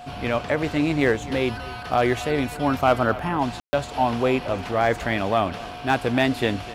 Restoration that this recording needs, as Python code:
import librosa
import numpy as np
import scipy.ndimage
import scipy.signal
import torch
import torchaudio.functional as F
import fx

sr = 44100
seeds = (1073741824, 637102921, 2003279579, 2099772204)

y = fx.fix_declip(x, sr, threshold_db=-9.0)
y = fx.notch(y, sr, hz=720.0, q=30.0)
y = fx.fix_ambience(y, sr, seeds[0], print_start_s=5.54, print_end_s=6.04, start_s=3.6, end_s=3.73)
y = fx.fix_echo_inverse(y, sr, delay_ms=255, level_db=-18.0)